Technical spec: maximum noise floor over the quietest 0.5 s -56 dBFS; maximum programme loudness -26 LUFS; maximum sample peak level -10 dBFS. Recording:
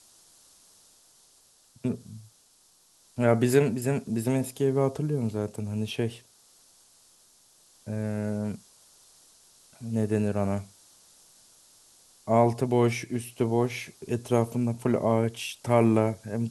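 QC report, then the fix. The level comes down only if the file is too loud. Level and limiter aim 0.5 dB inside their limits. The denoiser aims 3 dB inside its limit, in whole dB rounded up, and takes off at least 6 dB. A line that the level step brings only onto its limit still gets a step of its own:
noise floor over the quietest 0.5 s -61 dBFS: pass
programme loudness -27.5 LUFS: pass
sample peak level -8.0 dBFS: fail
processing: peak limiter -10.5 dBFS

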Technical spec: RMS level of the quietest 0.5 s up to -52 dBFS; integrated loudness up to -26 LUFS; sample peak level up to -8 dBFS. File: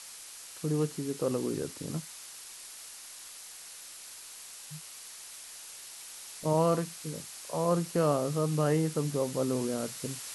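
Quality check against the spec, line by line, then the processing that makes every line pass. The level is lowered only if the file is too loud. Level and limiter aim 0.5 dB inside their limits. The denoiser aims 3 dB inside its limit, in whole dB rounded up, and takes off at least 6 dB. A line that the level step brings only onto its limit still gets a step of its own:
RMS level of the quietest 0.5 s -47 dBFS: fail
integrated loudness -32.0 LUFS: pass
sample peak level -14.5 dBFS: pass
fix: noise reduction 8 dB, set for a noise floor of -47 dBFS

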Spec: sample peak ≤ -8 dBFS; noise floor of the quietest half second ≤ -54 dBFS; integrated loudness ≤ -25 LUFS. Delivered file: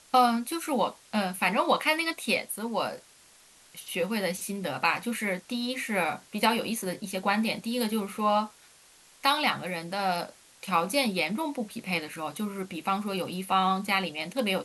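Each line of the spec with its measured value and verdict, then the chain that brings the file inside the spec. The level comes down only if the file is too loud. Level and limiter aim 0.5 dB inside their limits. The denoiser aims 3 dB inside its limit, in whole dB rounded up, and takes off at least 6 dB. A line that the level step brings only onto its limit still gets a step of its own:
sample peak -9.5 dBFS: pass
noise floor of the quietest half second -57 dBFS: pass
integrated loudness -28.5 LUFS: pass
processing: none needed

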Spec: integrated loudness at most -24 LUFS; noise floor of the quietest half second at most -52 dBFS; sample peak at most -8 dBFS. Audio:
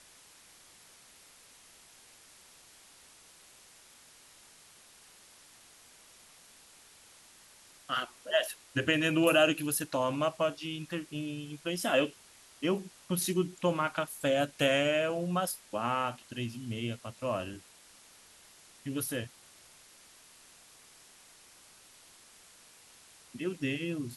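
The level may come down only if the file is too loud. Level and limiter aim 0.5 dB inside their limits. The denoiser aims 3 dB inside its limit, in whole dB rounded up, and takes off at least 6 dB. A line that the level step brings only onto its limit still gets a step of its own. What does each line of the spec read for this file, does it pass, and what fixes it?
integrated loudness -31.5 LUFS: pass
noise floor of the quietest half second -58 dBFS: pass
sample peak -13.0 dBFS: pass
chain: none needed

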